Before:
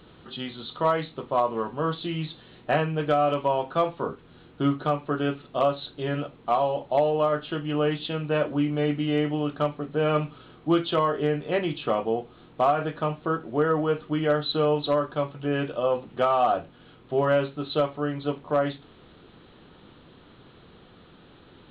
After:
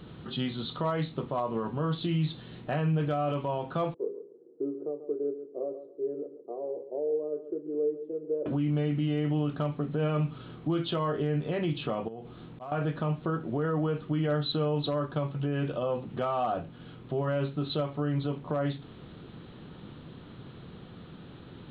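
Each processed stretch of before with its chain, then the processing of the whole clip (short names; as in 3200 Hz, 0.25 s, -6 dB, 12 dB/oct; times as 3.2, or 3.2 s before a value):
3.94–8.46 Butterworth band-pass 410 Hz, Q 3 + feedback echo 0.138 s, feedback 22%, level -13 dB
12.08–12.72 auto swell 0.381 s + compressor, threshold -38 dBFS
whole clip: compressor 1.5:1, threshold -33 dBFS; bell 140 Hz +9.5 dB 1.9 oct; limiter -21 dBFS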